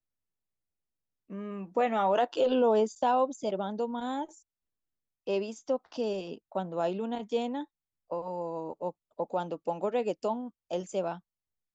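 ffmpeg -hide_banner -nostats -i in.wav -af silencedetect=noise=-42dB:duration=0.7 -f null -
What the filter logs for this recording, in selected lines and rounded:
silence_start: 0.00
silence_end: 1.30 | silence_duration: 1.30
silence_start: 4.25
silence_end: 5.27 | silence_duration: 1.02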